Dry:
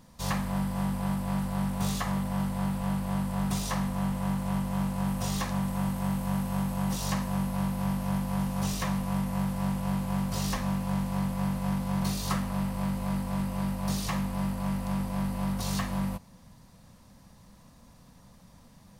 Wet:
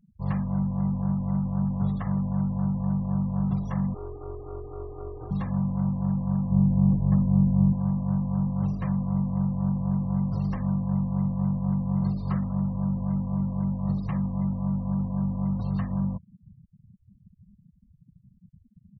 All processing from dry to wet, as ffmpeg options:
ffmpeg -i in.wav -filter_complex "[0:a]asettb=1/sr,asplit=3[link_01][link_02][link_03];[link_01]atrim=end=3.944[link_04];[link_02]atrim=start=3.94:end=5.31,asetpts=PTS-STARTPTS,afade=type=in:duration=0.004:curve=qsin,afade=type=out:start_time=1.366:duration=0.004:curve=qsin,highpass=160,lowpass=2400,aeval=exprs='val(0)*sin(2*PI*220*n/s)':channel_layout=same[link_05];[link_03]atrim=start=5.306[link_06];[link_04][link_05]acrossfade=duration=0.004:curve1=hsin:curve2=qsin[link_07];[link_07][link_06]acrossfade=duration=0.004:curve1=qsin:curve2=hsin,asettb=1/sr,asplit=3[link_08][link_09][link_10];[link_08]atrim=end=6.514[link_11];[link_09]atrim=start=6.51:end=7.73,asetpts=PTS-STARTPTS,afade=type=in:duration=0.004:curve=qsin,afade=type=out:start_time=1.216:duration=0.004:curve=qsin,tiltshelf=frequency=640:gain=6.5,adynamicsmooth=sensitivity=7.5:basefreq=1600[link_12];[link_10]atrim=start=7.726[link_13];[link_11][link_12]acrossfade=duration=0.004:curve1=hsin:curve2=qsin[link_14];[link_14][link_13]acrossfade=duration=0.004:curve1=qsin:curve2=hsin,lowpass=frequency=2000:poles=1,afftfilt=real='re*gte(hypot(re,im),0.0141)':imag='im*gte(hypot(re,im),0.0141)':win_size=1024:overlap=0.75,equalizer=frequency=120:width_type=o:width=2.1:gain=12,volume=-5dB" out.wav

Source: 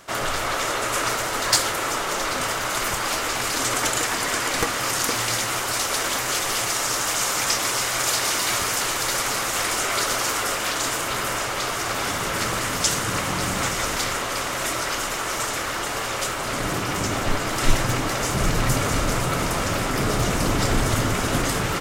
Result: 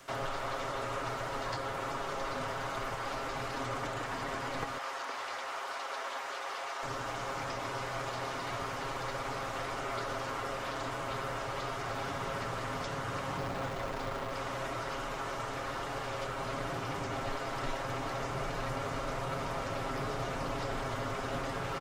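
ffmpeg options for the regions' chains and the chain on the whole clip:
ffmpeg -i in.wav -filter_complex "[0:a]asettb=1/sr,asplit=3[link_01][link_02][link_03];[link_01]atrim=end=4.784[link_04];[link_02]atrim=start=4.78:end=6.83,asetpts=PTS-STARTPTS,afade=type=in:duration=0.004:curve=qsin,afade=type=out:start_time=2.046:duration=0.004:curve=qsin,highpass=730,aemphasis=mode=reproduction:type=cd[link_05];[link_03]atrim=start=6.826[link_06];[link_04][link_05]acrossfade=duration=0.004:curve1=hsin:curve2=qsin[link_07];[link_07][link_06]acrossfade=duration=0.004:curve1=qsin:curve2=hsin,asettb=1/sr,asplit=3[link_08][link_09][link_10];[link_08]atrim=end=13.374[link_11];[link_09]atrim=start=13.37:end=14.33,asetpts=PTS-STARTPTS,afade=type=in:duration=0.004:curve=qsin,afade=type=out:start_time=0.956:duration=0.004:curve=qsin,tiltshelf=frequency=880:gain=5,acrusher=bits=5:dc=4:mix=0:aa=0.000001[link_12];[link_10]atrim=start=14.326[link_13];[link_11][link_12]acrossfade=duration=0.004:curve1=hsin:curve2=qsin[link_14];[link_14][link_13]acrossfade=duration=0.004:curve1=qsin:curve2=hsin,acrossover=split=230|460|1200|3800[link_15][link_16][link_17][link_18][link_19];[link_15]acompressor=threshold=-36dB:ratio=4[link_20];[link_16]acompressor=threshold=-45dB:ratio=4[link_21];[link_17]acompressor=threshold=-31dB:ratio=4[link_22];[link_18]acompressor=threshold=-42dB:ratio=4[link_23];[link_19]acompressor=threshold=-38dB:ratio=4[link_24];[link_20][link_21][link_22][link_23][link_24]amix=inputs=5:normalize=0,aecho=1:1:7.4:0.51,acrossover=split=4600[link_25][link_26];[link_26]acompressor=threshold=-53dB:ratio=4:attack=1:release=60[link_27];[link_25][link_27]amix=inputs=2:normalize=0,volume=-6.5dB" out.wav

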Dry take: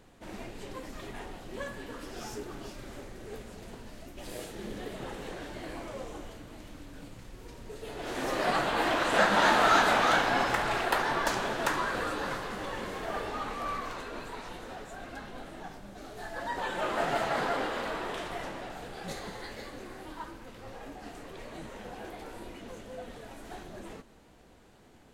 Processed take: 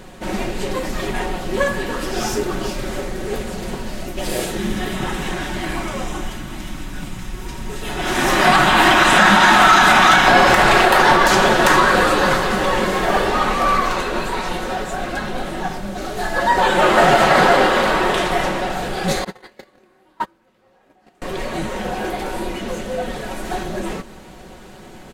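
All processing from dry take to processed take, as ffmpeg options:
ffmpeg -i in.wav -filter_complex "[0:a]asettb=1/sr,asplit=3[link_01][link_02][link_03];[link_01]atrim=end=4.574[link_04];[link_02]atrim=start=4.57:end=10.28,asetpts=PTS-STARTPTS,afade=type=in:duration=0.004:curve=qsin,afade=type=out:start_time=5.706:duration=0.004:curve=qsin,equalizer=frequency=500:width_type=o:width=0.66:gain=-12,bandreject=frequency=4400:width=11[link_05];[link_03]atrim=start=10.276[link_06];[link_04][link_05]acrossfade=duration=0.004:curve1=hsin:curve2=qsin[link_07];[link_07][link_06]acrossfade=duration=0.004:curve1=qsin:curve2=hsin,asettb=1/sr,asplit=3[link_08][link_09][link_10];[link_08]atrim=end=19.244[link_11];[link_09]atrim=start=19.24:end=21.22,asetpts=PTS-STARTPTS,afade=type=in:duration=0.004:curve=qsin,afade=type=out:start_time=1.976:duration=0.004:curve=qsin,highpass=frequency=150:poles=1,equalizer=frequency=7300:width=0.48:gain=-4.5,agate=range=-29dB:threshold=-41dB:ratio=16:release=100:detection=peak[link_12];[link_10]atrim=start=21.216[link_13];[link_11][link_12]acrossfade=duration=0.004:curve1=hsin:curve2=qsin[link_14];[link_14][link_13]acrossfade=duration=0.004:curve1=qsin:curve2=hsin,aecho=1:1:5.4:0.47,alimiter=level_in=18.5dB:limit=-1dB:release=50:level=0:latency=1,volume=-1dB" out.wav

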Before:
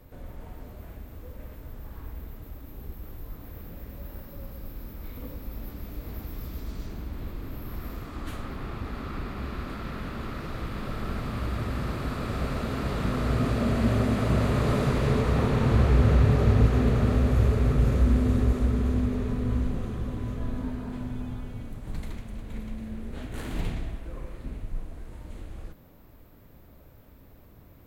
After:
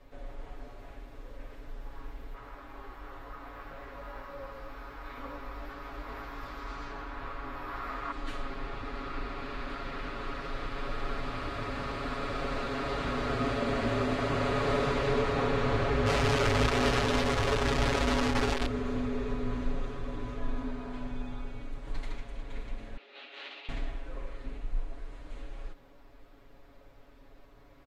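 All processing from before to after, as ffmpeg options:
ffmpeg -i in.wav -filter_complex "[0:a]asettb=1/sr,asplit=3[link_01][link_02][link_03];[link_01]atrim=end=2.344[link_04];[link_02]atrim=start=2.34:end=8.12,asetpts=PTS-STARTPTS,afade=type=in:duration=0.004:curve=qsin,afade=type=out:start_time=5.776:duration=0.004:curve=qsin,equalizer=frequency=1200:width_type=o:width=1.9:gain=14.5,flanger=delay=17.5:depth=3.3:speed=2[link_05];[link_03]atrim=start=8.116[link_06];[link_04][link_05]acrossfade=duration=0.004:curve1=hsin:curve2=qsin[link_07];[link_07][link_06]acrossfade=duration=0.004:curve1=qsin:curve2=hsin,asettb=1/sr,asplit=3[link_08][link_09][link_10];[link_08]atrim=end=16.064[link_11];[link_09]atrim=start=16.06:end=18.66,asetpts=PTS-STARTPTS,afade=type=in:duration=0.004:curve=qsin,afade=type=out:start_time=2.596:duration=0.004:curve=qsin,lowpass=4100,acrusher=bits=5:dc=4:mix=0:aa=0.000001[link_12];[link_10]atrim=start=18.656[link_13];[link_11][link_12]acrossfade=duration=0.004:curve1=hsin:curve2=qsin[link_14];[link_14][link_13]acrossfade=duration=0.004:curve1=qsin:curve2=hsin,asettb=1/sr,asplit=3[link_15][link_16][link_17];[link_15]atrim=end=22.974[link_18];[link_16]atrim=start=22.97:end=23.69,asetpts=PTS-STARTPTS,afade=type=in:duration=0.004:curve=qsin,afade=type=out:start_time=0.716:duration=0.004:curve=qsin,acompressor=threshold=-30dB:ratio=6:attack=3.2:release=140:knee=1:detection=peak,highpass=frequency=450:width=0.5412,highpass=frequency=450:width=1.3066,equalizer=frequency=460:width_type=q:width=4:gain=-8,equalizer=frequency=680:width_type=q:width=4:gain=-6,equalizer=frequency=1000:width_type=q:width=4:gain=-8,equalizer=frequency=1600:width_type=q:width=4:gain=-5,equalizer=frequency=2700:width_type=q:width=4:gain=6,equalizer=frequency=3900:width_type=q:width=4:gain=5,lowpass=frequency=4700:width=0.5412,lowpass=frequency=4700:width=1.3066[link_19];[link_17]atrim=start=23.686[link_20];[link_18][link_19]acrossfade=duration=0.004:curve1=hsin:curve2=qsin[link_21];[link_21][link_20]acrossfade=duration=0.004:curve1=qsin:curve2=hsin,lowpass=5700,equalizer=frequency=140:width=0.86:gain=-14.5,aecho=1:1:7.2:0.98,volume=-1.5dB" out.wav

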